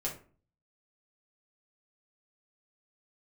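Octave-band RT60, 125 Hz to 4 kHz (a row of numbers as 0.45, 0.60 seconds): 0.65, 0.55, 0.45, 0.40, 0.35, 0.25 seconds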